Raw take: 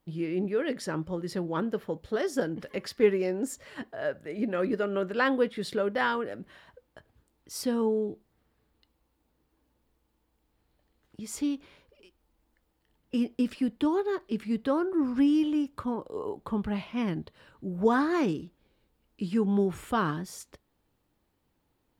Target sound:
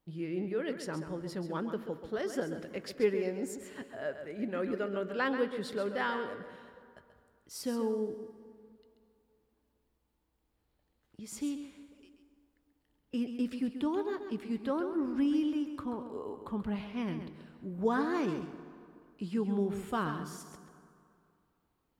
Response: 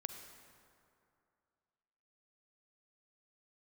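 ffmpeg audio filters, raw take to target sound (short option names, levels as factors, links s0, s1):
-filter_complex "[0:a]asplit=2[s0][s1];[1:a]atrim=start_sample=2205,adelay=134[s2];[s1][s2]afir=irnorm=-1:irlink=0,volume=0.501[s3];[s0][s3]amix=inputs=2:normalize=0,volume=0.501"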